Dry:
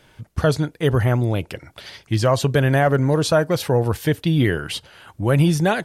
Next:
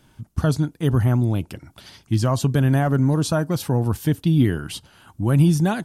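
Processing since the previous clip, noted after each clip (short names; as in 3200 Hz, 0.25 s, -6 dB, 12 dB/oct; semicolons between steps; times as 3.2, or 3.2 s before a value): ten-band EQ 250 Hz +5 dB, 500 Hz -10 dB, 2000 Hz -9 dB, 4000 Hz -4 dB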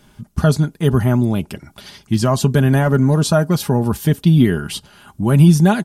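comb 4.9 ms, depth 49%; gain +5 dB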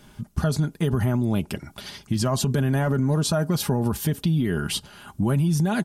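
limiter -11.5 dBFS, peak gain reduction 10 dB; compressor 2.5:1, threshold -20 dBFS, peak gain reduction 4 dB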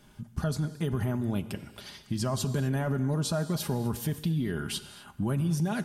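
non-linear reverb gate 0.28 s flat, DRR 12 dB; gain -7 dB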